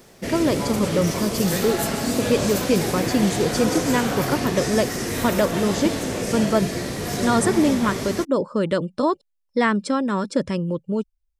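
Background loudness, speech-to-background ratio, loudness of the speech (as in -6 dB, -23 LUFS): -25.0 LUFS, 2.0 dB, -23.0 LUFS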